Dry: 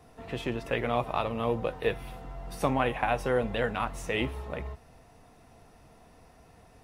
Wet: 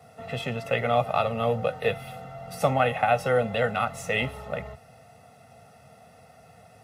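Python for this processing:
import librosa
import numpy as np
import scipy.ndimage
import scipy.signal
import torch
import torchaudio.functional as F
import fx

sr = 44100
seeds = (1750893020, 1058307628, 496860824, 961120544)

y = scipy.signal.sosfilt(scipy.signal.butter(4, 100.0, 'highpass', fs=sr, output='sos'), x)
y = y + 0.99 * np.pad(y, (int(1.5 * sr / 1000.0), 0))[:len(y)]
y = y * librosa.db_to_amplitude(1.5)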